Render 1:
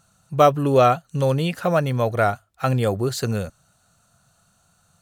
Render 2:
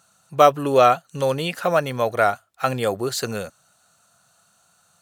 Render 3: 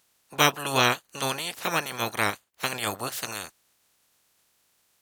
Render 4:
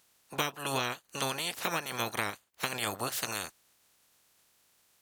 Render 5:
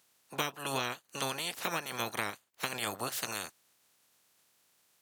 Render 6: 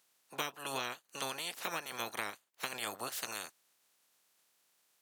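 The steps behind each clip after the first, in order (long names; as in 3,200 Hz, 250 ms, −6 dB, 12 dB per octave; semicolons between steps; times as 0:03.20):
high-pass filter 480 Hz 6 dB per octave; level +3 dB
ceiling on every frequency bin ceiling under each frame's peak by 27 dB; level −7 dB
downward compressor 12 to 1, threshold −28 dBFS, peak gain reduction 14.5 dB
high-pass filter 100 Hz; level −2 dB
low-shelf EQ 170 Hz −11 dB; level −3.5 dB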